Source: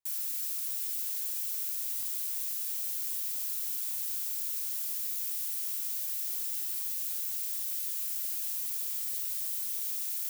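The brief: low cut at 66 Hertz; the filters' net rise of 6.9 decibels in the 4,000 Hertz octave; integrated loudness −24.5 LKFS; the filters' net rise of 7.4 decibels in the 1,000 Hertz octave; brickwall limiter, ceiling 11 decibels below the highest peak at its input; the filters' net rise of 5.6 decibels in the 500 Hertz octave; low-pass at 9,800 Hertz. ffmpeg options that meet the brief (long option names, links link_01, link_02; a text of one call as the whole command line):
ffmpeg -i in.wav -af "highpass=66,lowpass=9800,equalizer=frequency=500:width_type=o:gain=4,equalizer=frequency=1000:width_type=o:gain=8,equalizer=frequency=4000:width_type=o:gain=8.5,volume=20.5dB,alimiter=limit=-18dB:level=0:latency=1" out.wav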